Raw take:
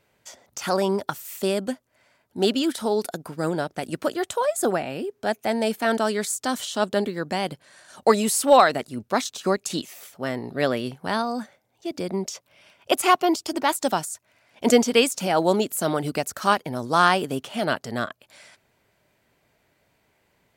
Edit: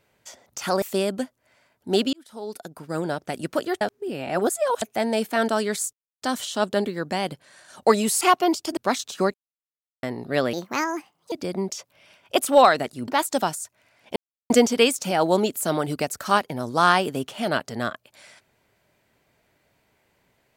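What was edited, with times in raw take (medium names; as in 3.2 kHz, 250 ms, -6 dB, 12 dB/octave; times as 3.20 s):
0.82–1.31 s: delete
2.62–3.72 s: fade in
4.30–5.31 s: reverse
6.42 s: insert silence 0.29 s
8.41–9.03 s: swap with 13.02–13.58 s
9.60–10.29 s: mute
10.79–11.88 s: speed 138%
14.66 s: insert silence 0.34 s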